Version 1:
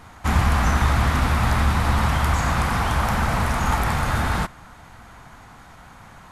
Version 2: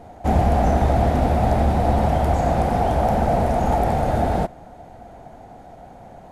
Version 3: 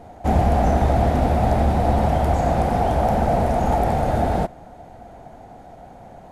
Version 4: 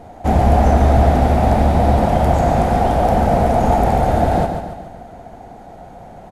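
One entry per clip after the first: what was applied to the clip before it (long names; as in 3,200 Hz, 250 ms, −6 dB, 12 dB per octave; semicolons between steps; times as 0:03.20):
drawn EQ curve 120 Hz 0 dB, 300 Hz +6 dB, 720 Hz +12 dB, 1,100 Hz −12 dB, 1,600 Hz −9 dB
no processing that can be heard
repeating echo 142 ms, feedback 49%, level −7 dB; level +3.5 dB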